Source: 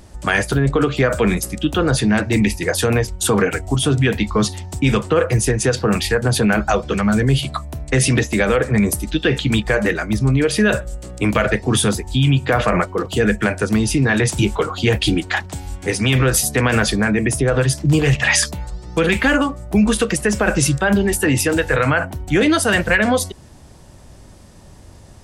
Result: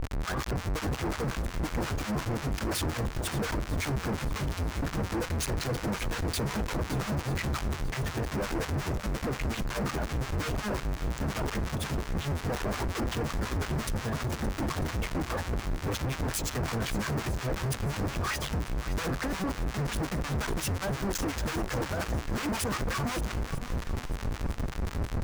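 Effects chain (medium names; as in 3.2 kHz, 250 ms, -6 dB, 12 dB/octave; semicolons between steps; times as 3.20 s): pitch shift switched off and on -7 st, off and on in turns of 113 ms; bass shelf 86 Hz +10 dB; reverse; compression 5:1, threshold -29 dBFS, peak gain reduction 19.5 dB; reverse; Schmitt trigger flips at -40.5 dBFS; harmonic tremolo 5.6 Hz, depth 100%, crossover 1 kHz; overload inside the chain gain 35.5 dB; on a send: shuffle delay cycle 946 ms, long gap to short 1.5:1, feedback 32%, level -13.5 dB; on the sum: trim +7 dB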